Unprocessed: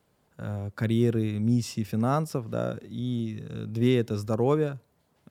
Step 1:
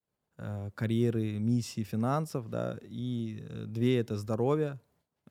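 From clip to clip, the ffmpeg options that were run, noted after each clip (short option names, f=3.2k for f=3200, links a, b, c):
-af "agate=range=-33dB:threshold=-59dB:ratio=3:detection=peak,volume=-4.5dB"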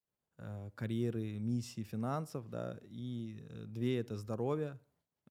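-filter_complex "[0:a]asplit=2[a][b];[b]adelay=66,lowpass=f=3.2k:p=1,volume=-23.5dB,asplit=2[c][d];[d]adelay=66,lowpass=f=3.2k:p=1,volume=0.41,asplit=2[e][f];[f]adelay=66,lowpass=f=3.2k:p=1,volume=0.41[g];[a][c][e][g]amix=inputs=4:normalize=0,volume=-7.5dB"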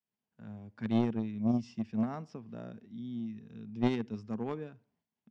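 -af "highpass=110,equalizer=f=140:t=q:w=4:g=-6,equalizer=f=220:t=q:w=4:g=9,equalizer=f=330:t=q:w=4:g=-4,equalizer=f=540:t=q:w=4:g=-9,equalizer=f=1.3k:t=q:w=4:g=-7,equalizer=f=4k:t=q:w=4:g=-7,lowpass=f=5.1k:w=0.5412,lowpass=f=5.1k:w=1.3066,aeval=exprs='0.0631*(cos(1*acos(clip(val(0)/0.0631,-1,1)))-cos(1*PI/2))+0.02*(cos(3*acos(clip(val(0)/0.0631,-1,1)))-cos(3*PI/2))+0.00398*(cos(5*acos(clip(val(0)/0.0631,-1,1)))-cos(5*PI/2))':c=same,volume=8.5dB"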